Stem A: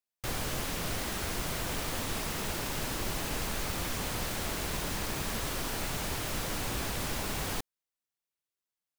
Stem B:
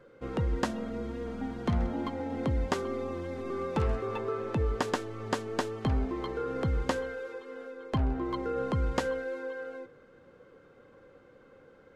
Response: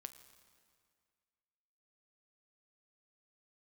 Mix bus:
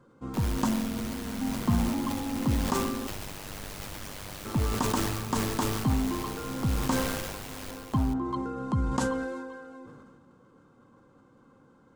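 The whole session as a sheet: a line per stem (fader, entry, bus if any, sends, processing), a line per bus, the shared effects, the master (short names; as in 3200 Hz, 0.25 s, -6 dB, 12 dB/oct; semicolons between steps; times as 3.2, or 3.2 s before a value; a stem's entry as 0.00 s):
-3.5 dB, 0.10 s, no send, echo send -8 dB, AM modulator 99 Hz, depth 85%
-7.0 dB, 0.00 s, muted 3.07–4.45, send -8 dB, no echo send, graphic EQ 125/250/500/1000/2000/8000 Hz +7/+10/-8/+11/-8/+10 dB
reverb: on, RT60 2.1 s, pre-delay 7 ms
echo: echo 0.428 s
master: sustainer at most 31 dB/s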